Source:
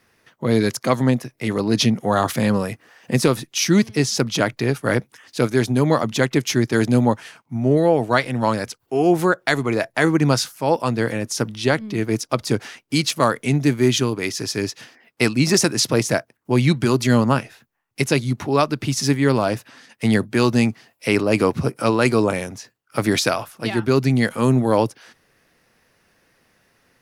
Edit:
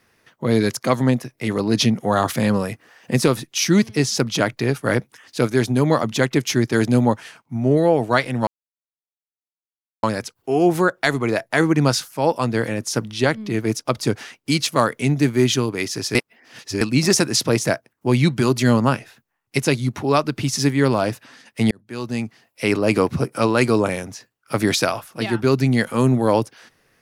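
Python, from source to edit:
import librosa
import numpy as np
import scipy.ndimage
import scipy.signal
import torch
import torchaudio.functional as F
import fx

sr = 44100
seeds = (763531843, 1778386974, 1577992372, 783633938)

y = fx.edit(x, sr, fx.insert_silence(at_s=8.47, length_s=1.56),
    fx.reverse_span(start_s=14.59, length_s=0.66),
    fx.fade_in_span(start_s=20.15, length_s=1.11), tone=tone)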